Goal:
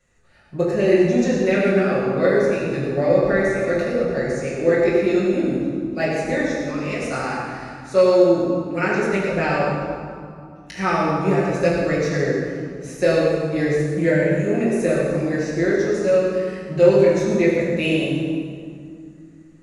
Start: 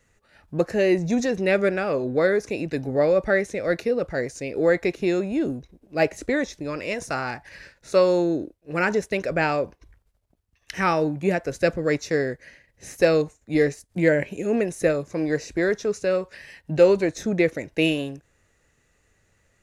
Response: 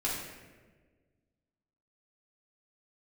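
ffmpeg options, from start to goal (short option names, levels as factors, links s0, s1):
-filter_complex "[1:a]atrim=start_sample=2205,asetrate=22491,aresample=44100[s0];[0:a][s0]afir=irnorm=-1:irlink=0,volume=0.398"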